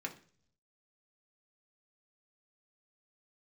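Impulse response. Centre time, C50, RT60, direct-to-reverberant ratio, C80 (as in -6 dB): 9 ms, 13.5 dB, 0.50 s, 0.5 dB, 18.0 dB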